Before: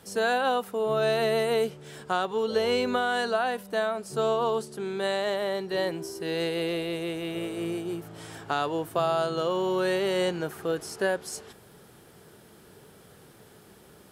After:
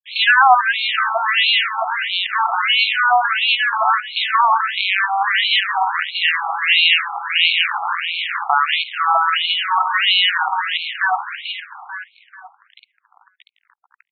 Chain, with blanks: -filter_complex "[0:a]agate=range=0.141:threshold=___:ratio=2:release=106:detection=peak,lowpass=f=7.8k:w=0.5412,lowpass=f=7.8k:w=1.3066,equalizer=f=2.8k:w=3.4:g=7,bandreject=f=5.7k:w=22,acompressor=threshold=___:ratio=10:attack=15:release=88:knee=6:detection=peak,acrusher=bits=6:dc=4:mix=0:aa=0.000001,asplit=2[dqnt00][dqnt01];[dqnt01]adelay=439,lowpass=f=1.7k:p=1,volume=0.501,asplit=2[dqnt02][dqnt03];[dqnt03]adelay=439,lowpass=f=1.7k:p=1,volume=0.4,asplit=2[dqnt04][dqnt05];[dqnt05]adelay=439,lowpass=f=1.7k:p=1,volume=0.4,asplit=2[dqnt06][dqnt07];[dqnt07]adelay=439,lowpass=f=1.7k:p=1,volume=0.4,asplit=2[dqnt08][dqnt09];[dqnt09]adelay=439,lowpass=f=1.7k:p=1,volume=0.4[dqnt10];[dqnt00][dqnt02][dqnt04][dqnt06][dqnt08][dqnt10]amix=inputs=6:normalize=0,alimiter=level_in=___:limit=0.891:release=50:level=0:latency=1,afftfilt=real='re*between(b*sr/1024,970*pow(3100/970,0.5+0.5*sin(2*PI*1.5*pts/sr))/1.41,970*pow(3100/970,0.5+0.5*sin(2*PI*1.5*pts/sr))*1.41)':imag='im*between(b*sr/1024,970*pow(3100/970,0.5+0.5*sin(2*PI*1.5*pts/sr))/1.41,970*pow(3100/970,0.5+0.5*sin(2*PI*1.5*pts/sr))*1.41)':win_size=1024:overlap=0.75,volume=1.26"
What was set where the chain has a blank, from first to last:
0.01, 0.0447, 18.8